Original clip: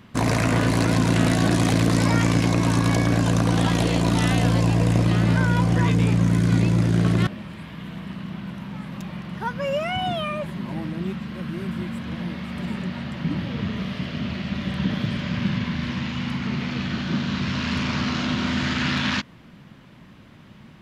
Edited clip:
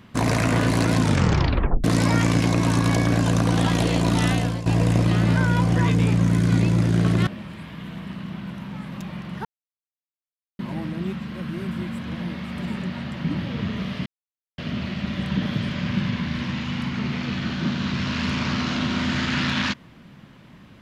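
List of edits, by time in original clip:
1.02 tape stop 0.82 s
4.29–4.66 fade out, to -14.5 dB
9.45–10.59 mute
14.06 insert silence 0.52 s

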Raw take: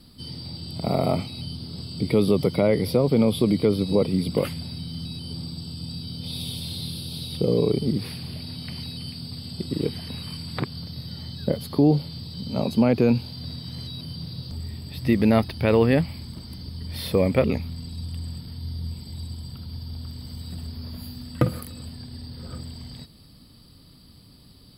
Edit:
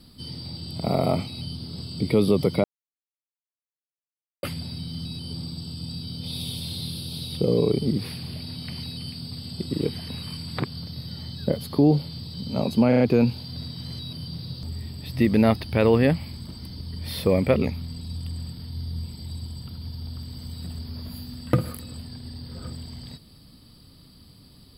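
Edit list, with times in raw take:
2.64–4.43 mute
12.88 stutter 0.04 s, 4 plays

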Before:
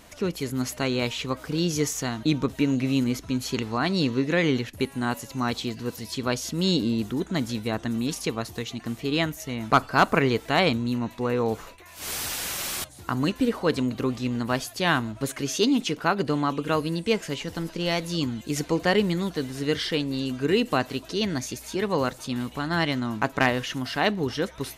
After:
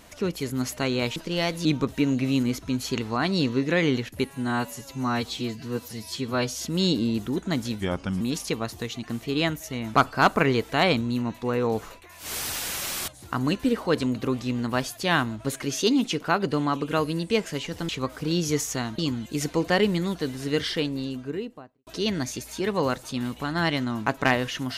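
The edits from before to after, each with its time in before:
1.16–2.26 swap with 17.65–18.14
4.91–6.45 stretch 1.5×
7.64–7.97 speed 81%
19.82–21.02 studio fade out

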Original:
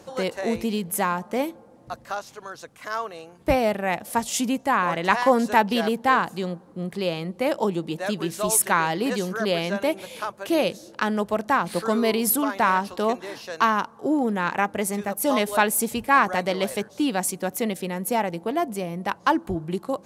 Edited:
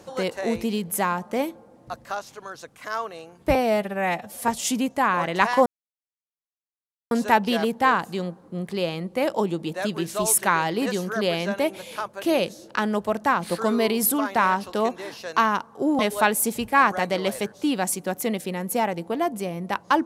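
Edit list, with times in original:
3.55–4.17 stretch 1.5×
5.35 insert silence 1.45 s
14.23–15.35 cut

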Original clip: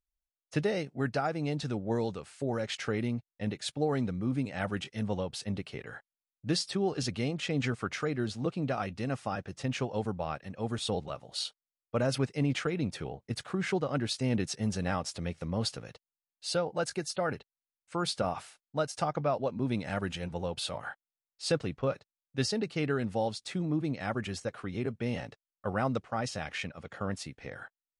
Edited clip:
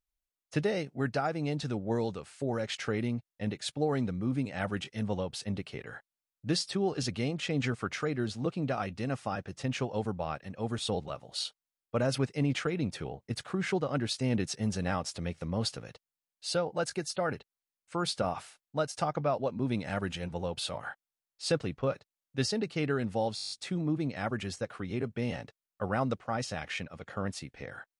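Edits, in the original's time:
23.35 stutter 0.02 s, 9 plays

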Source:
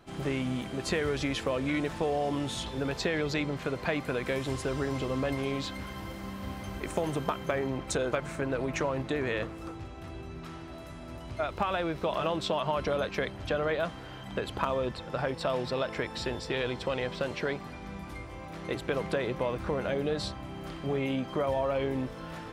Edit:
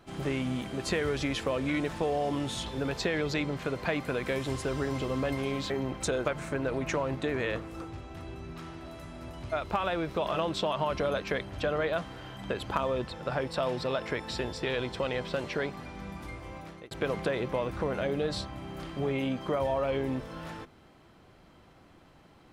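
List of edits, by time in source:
5.7–7.57 cut
18.44–18.78 fade out

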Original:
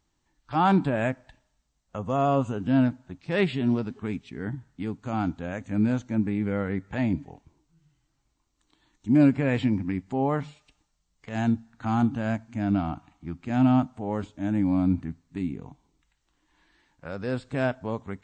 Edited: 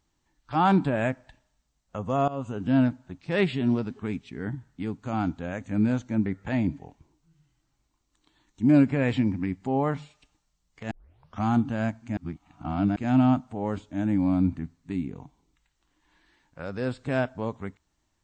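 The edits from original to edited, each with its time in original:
2.28–2.64 fade in, from -18 dB
6.26–6.72 cut
11.37 tape start 0.53 s
12.63–13.42 reverse

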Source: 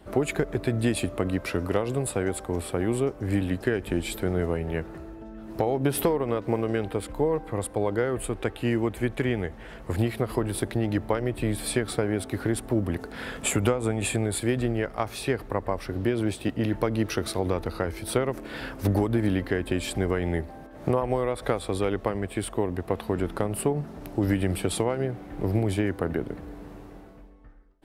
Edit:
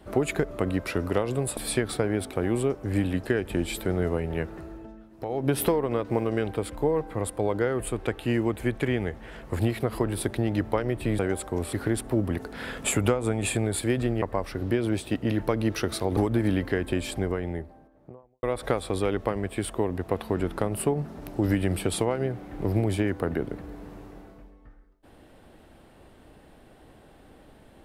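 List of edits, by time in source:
0.51–1.1 cut
2.16–2.7 swap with 11.56–12.32
5.18–5.85 dip -12.5 dB, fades 0.28 s
14.81–15.56 cut
17.51–18.96 cut
19.57–21.22 studio fade out

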